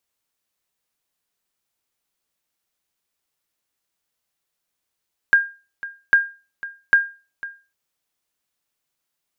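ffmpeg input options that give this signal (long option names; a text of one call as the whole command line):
ffmpeg -f lavfi -i "aevalsrc='0.501*(sin(2*PI*1610*mod(t,0.8))*exp(-6.91*mod(t,0.8)/0.32)+0.133*sin(2*PI*1610*max(mod(t,0.8)-0.5,0))*exp(-6.91*max(mod(t,0.8)-0.5,0)/0.32))':duration=2.4:sample_rate=44100" out.wav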